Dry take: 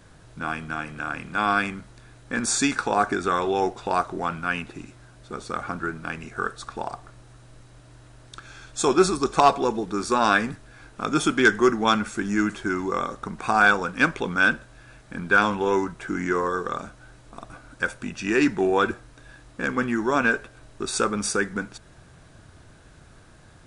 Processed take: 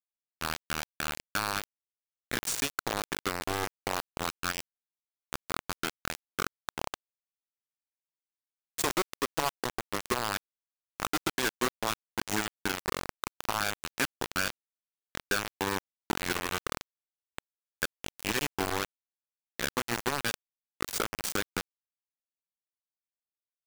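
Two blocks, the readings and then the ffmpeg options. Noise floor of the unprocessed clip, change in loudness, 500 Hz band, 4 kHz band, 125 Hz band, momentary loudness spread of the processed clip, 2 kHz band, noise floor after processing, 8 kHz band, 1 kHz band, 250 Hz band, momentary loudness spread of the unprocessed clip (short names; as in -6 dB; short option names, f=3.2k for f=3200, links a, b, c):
-51 dBFS, -9.5 dB, -12.5 dB, -2.0 dB, -8.5 dB, 9 LU, -10.5 dB, under -85 dBFS, -3.5 dB, -11.0 dB, -13.0 dB, 15 LU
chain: -af "acompressor=threshold=-25dB:ratio=10,acrusher=bits=3:mix=0:aa=0.000001,volume=-2.5dB"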